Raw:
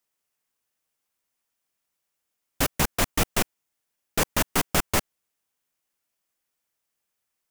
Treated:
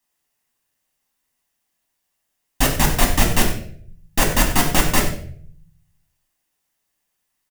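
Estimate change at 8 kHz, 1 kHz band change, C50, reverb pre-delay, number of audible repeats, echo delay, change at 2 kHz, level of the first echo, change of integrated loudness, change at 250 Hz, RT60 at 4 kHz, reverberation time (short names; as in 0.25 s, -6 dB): +6.5 dB, +7.0 dB, 7.0 dB, 4 ms, 1, 94 ms, +6.5 dB, -12.0 dB, +6.5 dB, +8.0 dB, 0.45 s, 0.55 s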